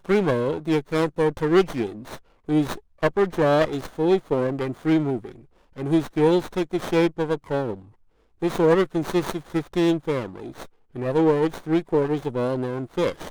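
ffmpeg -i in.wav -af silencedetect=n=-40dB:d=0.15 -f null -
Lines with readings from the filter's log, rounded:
silence_start: 2.18
silence_end: 2.48 | silence_duration: 0.30
silence_start: 2.79
silence_end: 3.02 | silence_duration: 0.23
silence_start: 5.43
silence_end: 5.77 | silence_duration: 0.34
silence_start: 7.82
silence_end: 8.42 | silence_duration: 0.60
silence_start: 10.66
silence_end: 10.95 | silence_duration: 0.29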